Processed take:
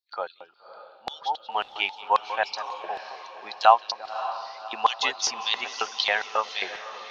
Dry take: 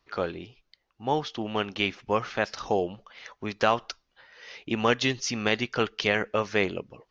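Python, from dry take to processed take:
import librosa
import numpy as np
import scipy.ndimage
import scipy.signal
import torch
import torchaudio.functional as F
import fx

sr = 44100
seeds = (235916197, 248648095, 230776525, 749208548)

y = fx.bin_expand(x, sr, power=1.5)
y = fx.echo_filtered(y, sr, ms=183, feedback_pct=41, hz=1500.0, wet_db=-11)
y = fx.filter_lfo_highpass(y, sr, shape='square', hz=3.7, low_hz=830.0, high_hz=3900.0, q=4.5)
y = fx.echo_diffused(y, sr, ms=571, feedback_pct=48, wet_db=-12.0)
y = y * librosa.db_to_amplitude(2.5)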